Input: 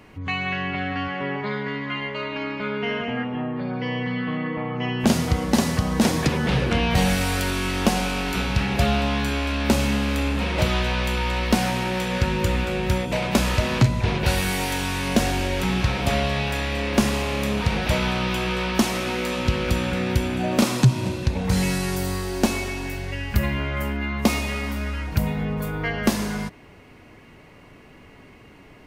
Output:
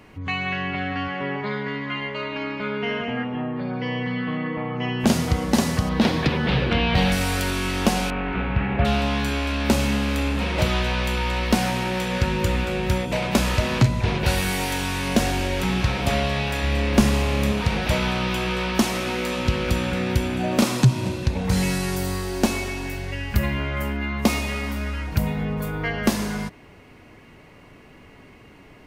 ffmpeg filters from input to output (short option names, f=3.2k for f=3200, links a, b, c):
-filter_complex "[0:a]asettb=1/sr,asplit=3[a][b][c];[a]atrim=end=5.894[d];[b]atrim=start=5.89:end=7.12,asetpts=PTS-STARTPTS,afade=t=in:d=0.004:c=qsin,afade=t=out:st=1.226:d=0.004:c=qsin,highshelf=f=5.4k:t=q:w=1.5:g=-11.5[e];[c]atrim=start=7.116[f];[d][e]acrossfade=d=0.004:c1=hsin:c2=qsin[g];[g][f]acrossfade=d=0.004:c1=qsin:c2=hsin,asettb=1/sr,asplit=3[h][i][j];[h]atrim=end=8.104[k];[i]atrim=start=8.1:end=8.85,asetpts=PTS-STARTPTS,afade=t=in:d=0.004:c=qsin,afade=t=out:st=0.746:d=0.004:c=qsin,lowpass=f=2.4k:w=0.5412,lowpass=f=2.4k:w=1.3066[l];[j]atrim=start=8.846[m];[k][l]acrossfade=d=0.004:c1=hsin:c2=qsin[n];[n][m]acrossfade=d=0.004:c1=qsin:c2=hsin,asettb=1/sr,asplit=3[o][p][q];[o]atrim=end=16.634[r];[p]atrim=start=16.63:end=17.52,asetpts=PTS-STARTPTS,afade=t=in:d=0.004:c=qsin,afade=t=out:st=0.886:d=0.004:c=qsin,lowshelf=f=160:g=8[s];[q]atrim=start=17.516[t];[r][s]acrossfade=d=0.004:c1=hsin:c2=qsin[u];[u][t]acrossfade=d=0.004:c1=qsin:c2=hsin"